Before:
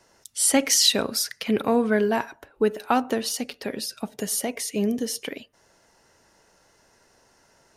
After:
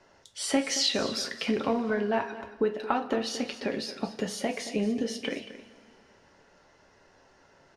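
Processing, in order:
low-pass filter 3,800 Hz 12 dB per octave
downward compressor, threshold −24 dBFS, peak gain reduction 9.5 dB
on a send: single-tap delay 225 ms −14 dB
on the sum: coupled-rooms reverb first 0.23 s, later 2.5 s, from −21 dB, DRR 4.5 dB

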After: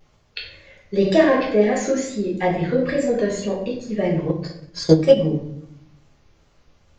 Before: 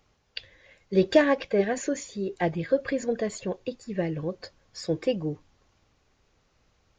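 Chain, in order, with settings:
tape wow and flutter 110 cents
rectangular room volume 130 cubic metres, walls mixed, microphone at 1.3 metres
in parallel at +1 dB: brickwall limiter −13.5 dBFS, peak gain reduction 12 dB
0:04.29–0:05.17: on the sum: transient designer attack +10 dB, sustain −4 dB
level −4.5 dB

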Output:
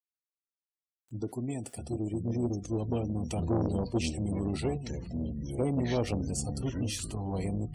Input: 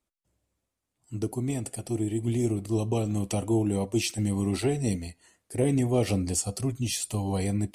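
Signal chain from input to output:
0:01.20–0:01.87: high-pass filter 100 Hz 6 dB per octave
0:04.77–0:05.59: downward compressor 8 to 1, threshold −37 dBFS, peak gain reduction 15 dB
tuned comb filter 240 Hz, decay 0.33 s, harmonics all, mix 50%
delay with pitch and tempo change per echo 186 ms, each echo −6 semitones, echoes 3, each echo −6 dB
high-shelf EQ 8,900 Hz −7 dB
bit-depth reduction 10 bits, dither none
gate on every frequency bin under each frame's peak −30 dB strong
0:03.38–0:04.10: low-shelf EQ 240 Hz +5 dB
saturating transformer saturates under 410 Hz
level +1.5 dB

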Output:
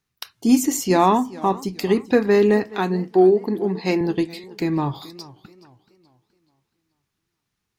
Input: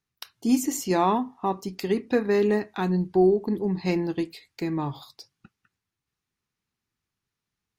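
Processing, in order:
0:02.75–0:04.01: high-pass filter 240 Hz 12 dB per octave
feedback echo with a swinging delay time 427 ms, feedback 37%, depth 140 cents, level −19.5 dB
level +6 dB

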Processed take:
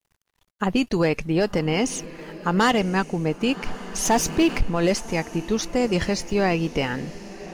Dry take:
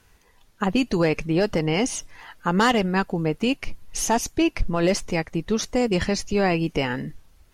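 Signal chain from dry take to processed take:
dead-zone distortion −52 dBFS
feedback delay with all-pass diffusion 1,086 ms, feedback 53%, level −16 dB
0:04.05–0:04.63: power curve on the samples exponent 0.7

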